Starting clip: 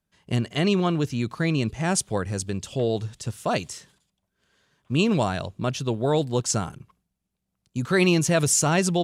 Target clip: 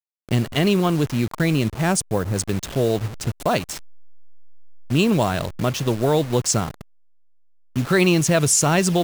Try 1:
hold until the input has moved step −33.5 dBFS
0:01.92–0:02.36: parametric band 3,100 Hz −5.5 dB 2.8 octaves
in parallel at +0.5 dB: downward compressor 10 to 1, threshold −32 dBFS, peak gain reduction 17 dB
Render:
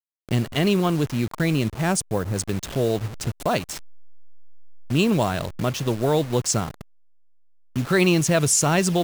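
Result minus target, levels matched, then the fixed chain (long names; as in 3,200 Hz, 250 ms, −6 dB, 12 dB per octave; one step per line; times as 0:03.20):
downward compressor: peak gain reduction +7 dB
hold until the input has moved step −33.5 dBFS
0:01.92–0:02.36: parametric band 3,100 Hz −5.5 dB 2.8 octaves
in parallel at +0.5 dB: downward compressor 10 to 1, threshold −24 dBFS, peak gain reduction 10 dB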